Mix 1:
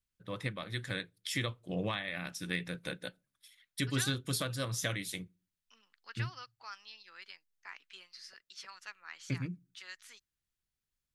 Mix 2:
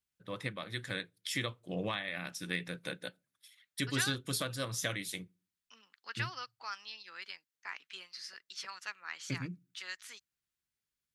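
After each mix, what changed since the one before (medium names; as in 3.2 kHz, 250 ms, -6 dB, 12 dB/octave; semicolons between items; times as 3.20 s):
first voice: add high-pass 150 Hz 6 dB/octave; second voice +5.0 dB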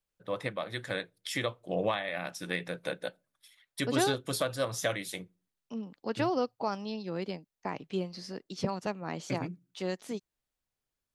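second voice: remove resonant high-pass 1.5 kHz, resonance Q 1.9; master: add peaking EQ 660 Hz +11 dB 1.5 oct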